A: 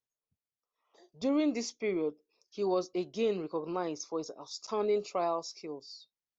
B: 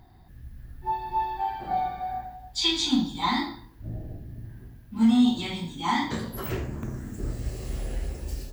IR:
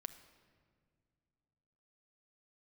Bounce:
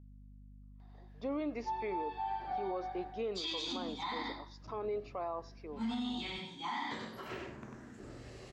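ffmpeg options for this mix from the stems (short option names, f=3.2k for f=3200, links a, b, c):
-filter_complex "[0:a]lowpass=1.6k,aemphasis=mode=production:type=riaa,aeval=exprs='val(0)+0.00251*(sin(2*PI*50*n/s)+sin(2*PI*2*50*n/s)/2+sin(2*PI*3*50*n/s)/3+sin(2*PI*4*50*n/s)/4+sin(2*PI*5*50*n/s)/5)':c=same,volume=-2dB,asplit=3[a][b][c];[b]volume=-16.5dB[d];[c]volume=-23dB[e];[1:a]highpass=f=560:p=1,adelay=800,volume=-7dB,asplit=2[f][g];[g]volume=-4dB[h];[2:a]atrim=start_sample=2205[i];[d][i]afir=irnorm=-1:irlink=0[j];[e][h]amix=inputs=2:normalize=0,aecho=0:1:96:1[k];[a][f][j][k]amix=inputs=4:normalize=0,lowpass=4.6k,alimiter=level_in=5.5dB:limit=-24dB:level=0:latency=1:release=62,volume=-5.5dB"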